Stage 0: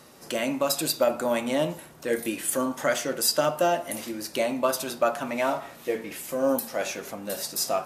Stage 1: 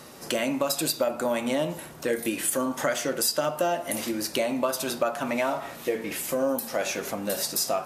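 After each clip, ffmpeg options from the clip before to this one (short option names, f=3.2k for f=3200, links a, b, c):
-af "acompressor=threshold=-30dB:ratio=3,volume=5.5dB"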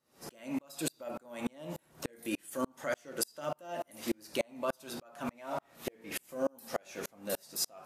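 -filter_complex "[0:a]asplit=2[a][b];[b]alimiter=limit=-19.5dB:level=0:latency=1:release=19,volume=1dB[c];[a][c]amix=inputs=2:normalize=0,aeval=exprs='val(0)*pow(10,-38*if(lt(mod(-3.4*n/s,1),2*abs(-3.4)/1000),1-mod(-3.4*n/s,1)/(2*abs(-3.4)/1000),(mod(-3.4*n/s,1)-2*abs(-3.4)/1000)/(1-2*abs(-3.4)/1000))/20)':c=same,volume=-7dB"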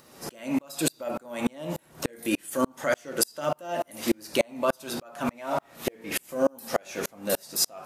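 -af "acompressor=mode=upward:threshold=-54dB:ratio=2.5,volume=9dB"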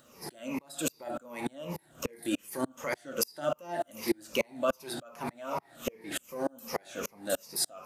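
-af "afftfilt=real='re*pow(10,11/40*sin(2*PI*(0.83*log(max(b,1)*sr/1024/100)/log(2)-(-2.6)*(pts-256)/sr)))':imag='im*pow(10,11/40*sin(2*PI*(0.83*log(max(b,1)*sr/1024/100)/log(2)-(-2.6)*(pts-256)/sr)))':win_size=1024:overlap=0.75,volume=-6.5dB"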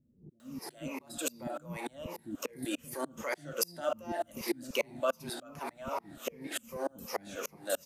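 -filter_complex "[0:a]acrossover=split=270[a][b];[b]adelay=400[c];[a][c]amix=inputs=2:normalize=0,volume=-1.5dB"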